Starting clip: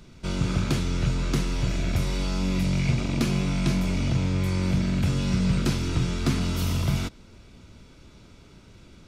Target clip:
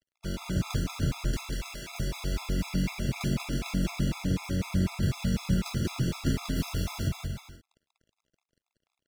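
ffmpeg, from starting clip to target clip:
-filter_complex "[0:a]asettb=1/sr,asplit=3[a][b][c];[a]atrim=end=1.314[d];[b]atrim=start=1.31:end=2,asetpts=PTS-STARTPTS,afade=t=in:d=0.004:c=qsin,afade=t=out:st=0.686:d=0.004:c=qsin,highpass=f=820:p=1[e];[c]atrim=start=1.996[f];[d][e]acrossfade=d=0.004:c1=hsin:c2=qsin[g];[g][f]acrossfade=d=0.004:c1=qsin:c2=hsin,acrusher=bits=5:mix=0:aa=0.5,aecho=1:1:190|323|416.1|481.3|526.9:0.631|0.398|0.251|0.158|0.1,afftfilt=real='re*gt(sin(2*PI*4*pts/sr)*(1-2*mod(floor(b*sr/1024/680),2)),0)':imag='im*gt(sin(2*PI*4*pts/sr)*(1-2*mod(floor(b*sr/1024/680),2)),0)':win_size=1024:overlap=0.75,volume=-4dB"

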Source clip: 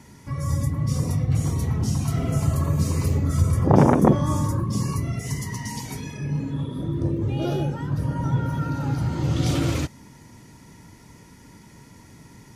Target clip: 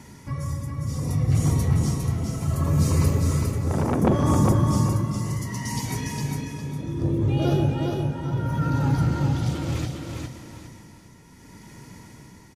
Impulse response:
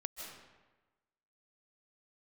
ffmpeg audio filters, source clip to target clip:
-filter_complex "[0:a]asoftclip=type=tanh:threshold=-12dB,tremolo=f=0.68:d=0.73,aecho=1:1:406|812|1218|1624:0.631|0.183|0.0531|0.0154,asplit=2[a][b];[1:a]atrim=start_sample=2205[c];[b][c]afir=irnorm=-1:irlink=0,volume=-5dB[d];[a][d]amix=inputs=2:normalize=0"

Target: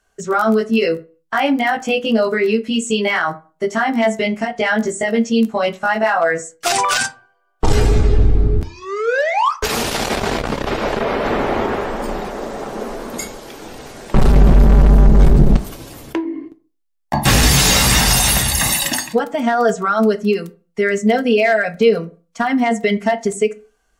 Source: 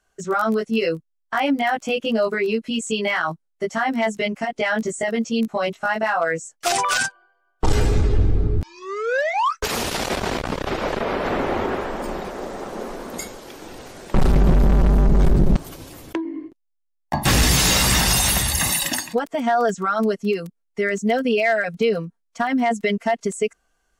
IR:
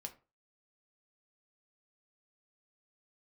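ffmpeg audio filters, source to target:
-filter_complex "[0:a]asplit=2[a][b];[1:a]atrim=start_sample=2205,asetrate=38367,aresample=44100[c];[b][c]afir=irnorm=-1:irlink=0,volume=5.5dB[d];[a][d]amix=inputs=2:normalize=0,volume=-2.5dB"

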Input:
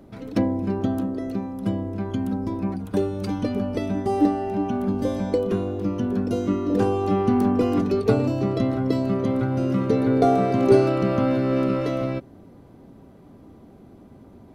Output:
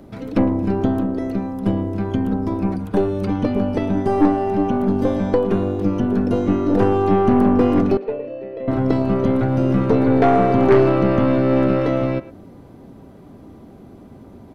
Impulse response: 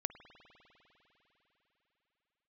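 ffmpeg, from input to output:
-filter_complex "[0:a]acrossover=split=3200[a][b];[b]acompressor=threshold=-59dB:ratio=6[c];[a][c]amix=inputs=2:normalize=0,asettb=1/sr,asplit=3[d][e][f];[d]atrim=end=7.974[g];[e]atrim=start=7.97:end=8.68,asetpts=PTS-STARTPTS,afade=t=in:d=0.004:c=qsin,afade=t=out:st=0.706:d=0.004:c=qsin,asplit=3[h][i][j];[h]bandpass=f=530:t=q:w=8,volume=0dB[k];[i]bandpass=f=1.84k:t=q:w=8,volume=-6dB[l];[j]bandpass=f=2.48k:t=q:w=8,volume=-9dB[m];[k][l][m]amix=inputs=3:normalize=0[n];[f]atrim=start=8.676[o];[g][n]acrossfade=d=0.004:c1=hsin:c2=qsin[p];[p][o]acrossfade=d=0.004:c1=qsin:c2=hsin,aeval=exprs='0.668*(cos(1*acos(clip(val(0)/0.668,-1,1)))-cos(1*PI/2))+0.119*(cos(5*acos(clip(val(0)/0.668,-1,1)))-cos(5*PI/2))+0.0668*(cos(8*acos(clip(val(0)/0.668,-1,1)))-cos(8*PI/2))':c=same,asplit=2[q][r];[r]adelay=110,highpass=300,lowpass=3.4k,asoftclip=type=hard:threshold=-11dB,volume=-15dB[s];[q][s]amix=inputs=2:normalize=0"

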